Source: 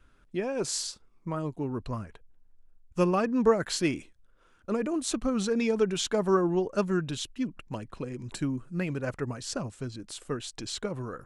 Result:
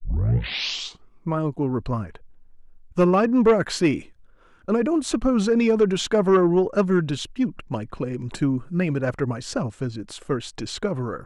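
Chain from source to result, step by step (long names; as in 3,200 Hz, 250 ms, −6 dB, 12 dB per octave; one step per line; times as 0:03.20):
turntable start at the beginning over 1.12 s
high-shelf EQ 3,900 Hz −10 dB
in parallel at −10.5 dB: sine wavefolder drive 8 dB, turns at −10.5 dBFS
on the sum: level +2 dB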